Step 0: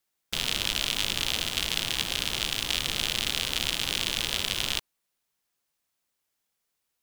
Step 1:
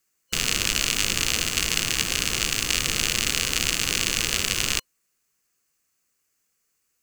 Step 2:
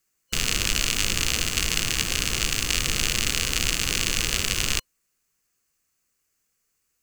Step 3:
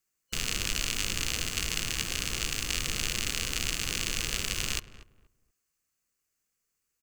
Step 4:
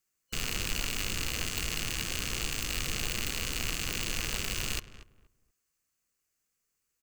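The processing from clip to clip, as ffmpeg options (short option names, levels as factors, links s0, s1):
-af "superequalizer=8b=0.562:9b=0.447:13b=0.447:15b=1.78,volume=2"
-af "lowshelf=f=95:g=8,volume=0.891"
-filter_complex "[0:a]asplit=2[s0][s1];[s1]adelay=238,lowpass=f=1200:p=1,volume=0.2,asplit=2[s2][s3];[s3]adelay=238,lowpass=f=1200:p=1,volume=0.26,asplit=2[s4][s5];[s5]adelay=238,lowpass=f=1200:p=1,volume=0.26[s6];[s0][s2][s4][s6]amix=inputs=4:normalize=0,volume=0.447"
-af "aeval=exprs='0.119*(abs(mod(val(0)/0.119+3,4)-2)-1)':c=same"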